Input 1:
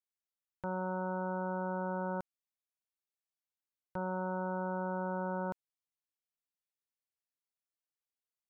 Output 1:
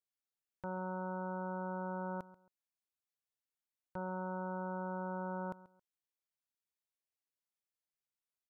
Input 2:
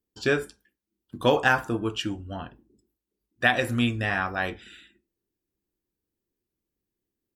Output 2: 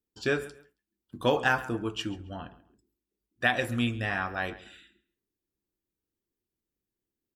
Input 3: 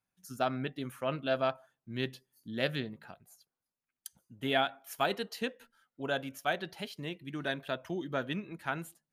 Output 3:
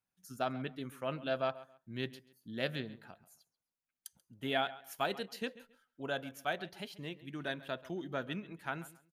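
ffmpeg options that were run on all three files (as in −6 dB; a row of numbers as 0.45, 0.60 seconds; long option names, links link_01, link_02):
-filter_complex "[0:a]asplit=2[link_01][link_02];[link_02]adelay=136,lowpass=frequency=4500:poles=1,volume=-17.5dB,asplit=2[link_03][link_04];[link_04]adelay=136,lowpass=frequency=4500:poles=1,volume=0.25[link_05];[link_01][link_03][link_05]amix=inputs=3:normalize=0,volume=-4dB"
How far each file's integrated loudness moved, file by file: −4.0, −4.0, −4.0 LU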